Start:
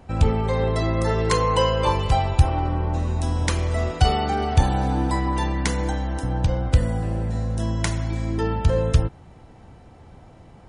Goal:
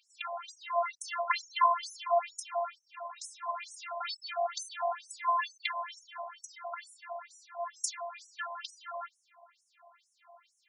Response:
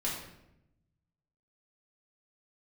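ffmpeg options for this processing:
-af "afftfilt=real='hypot(re,im)*cos(PI*b)':imag='0':win_size=512:overlap=0.75,afftfilt=real='re*between(b*sr/1024,780*pow(8000/780,0.5+0.5*sin(2*PI*2.2*pts/sr))/1.41,780*pow(8000/780,0.5+0.5*sin(2*PI*2.2*pts/sr))*1.41)':imag='im*between(b*sr/1024,780*pow(8000/780,0.5+0.5*sin(2*PI*2.2*pts/sr))/1.41,780*pow(8000/780,0.5+0.5*sin(2*PI*2.2*pts/sr))*1.41)':win_size=1024:overlap=0.75,volume=3.5dB"

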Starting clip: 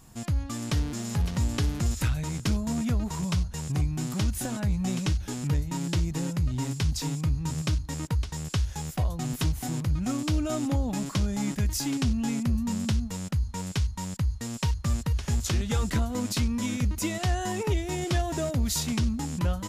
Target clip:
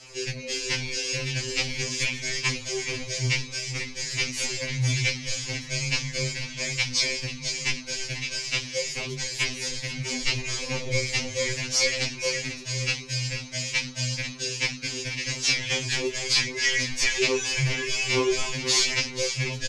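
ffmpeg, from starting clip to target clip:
ffmpeg -i in.wav -filter_complex "[0:a]asuperstop=centerf=1300:order=12:qfactor=1.2,highshelf=frequency=3000:gain=4,aeval=exprs='0.224*(cos(1*acos(clip(val(0)/0.224,-1,1)))-cos(1*PI/2))+0.0447*(cos(2*acos(clip(val(0)/0.224,-1,1)))-cos(2*PI/2))+0.0891*(cos(5*acos(clip(val(0)/0.224,-1,1)))-cos(5*PI/2))+0.00158*(cos(6*acos(clip(val(0)/0.224,-1,1)))-cos(6*PI/2))+0.00708*(cos(8*acos(clip(val(0)/0.224,-1,1)))-cos(8*PI/2))':channel_layout=same,crystalizer=i=4.5:c=0,acrusher=bits=6:mix=0:aa=0.000001,highpass=270,equalizer=frequency=780:width_type=q:width=4:gain=5,equalizer=frequency=1300:width_type=q:width=4:gain=8,equalizer=frequency=2600:width_type=q:width=4:gain=8,equalizer=frequency=4000:width_type=q:width=4:gain=-6,lowpass=frequency=5400:width=0.5412,lowpass=frequency=5400:width=1.3066,asplit=2[link_01][link_02];[link_02]aecho=0:1:485|970|1455:0.282|0.0874|0.0271[link_03];[link_01][link_03]amix=inputs=2:normalize=0,flanger=delay=15.5:depth=7:speed=0.42,afreqshift=-310,afftfilt=real='re*2.45*eq(mod(b,6),0)':imag='im*2.45*eq(mod(b,6),0)':win_size=2048:overlap=0.75" out.wav

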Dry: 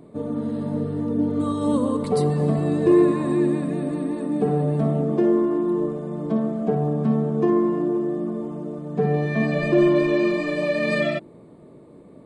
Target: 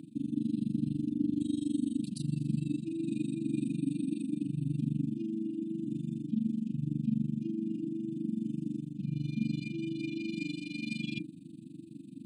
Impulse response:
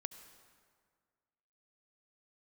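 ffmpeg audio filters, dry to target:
-af "highpass=frequency=140:width=0.5412,highpass=frequency=140:width=1.3066,bandreject=frequency=60:width_type=h:width=6,bandreject=frequency=120:width_type=h:width=6,bandreject=frequency=180:width_type=h:width=6,bandreject=frequency=240:width_type=h:width=6,bandreject=frequency=300:width_type=h:width=6,tremolo=f=24:d=0.947,areverse,acompressor=threshold=-35dB:ratio=4,areverse,afftfilt=real='re*(1-between(b*sr/4096,340,2400))':imag='im*(1-between(b*sr/4096,340,2400))':win_size=4096:overlap=0.75,volume=7dB"

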